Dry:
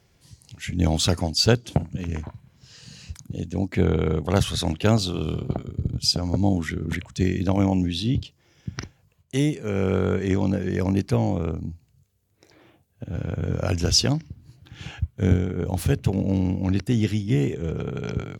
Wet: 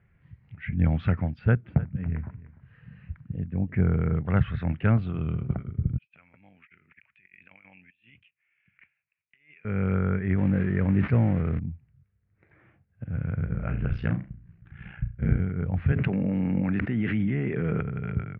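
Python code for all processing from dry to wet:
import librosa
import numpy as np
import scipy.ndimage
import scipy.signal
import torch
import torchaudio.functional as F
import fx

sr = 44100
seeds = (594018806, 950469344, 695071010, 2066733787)

y = fx.chain(x, sr, fx.lowpass(hz=1800.0, slope=6),
    fx.echo_single(ms=299, db=-18.0), at=(1.39, 4.15))
y = fx.chain(y, sr, fx.bandpass_q(hz=2500.0, q=6.2),
    fx.over_compress(threshold_db=-50.0, ratio=-0.5), at=(5.98, 9.65))
y = fx.chain(y, sr, fx.crossing_spikes(level_db=-19.5),
    fx.peak_eq(hz=360.0, db=3.0, octaves=1.7),
    fx.sustainer(db_per_s=25.0), at=(10.38, 11.59))
y = fx.chain(y, sr, fx.room_flutter(wall_m=6.2, rt60_s=0.3),
    fx.ring_mod(carrier_hz=30.0), at=(13.45, 15.4))
y = fx.chain(y, sr, fx.highpass(hz=210.0, slope=12),
    fx.env_flatten(amount_pct=100), at=(15.92, 17.81))
y = scipy.signal.sosfilt(scipy.signal.butter(6, 2200.0, 'lowpass', fs=sr, output='sos'), y)
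y = fx.band_shelf(y, sr, hz=520.0, db=-9.5, octaves=2.3)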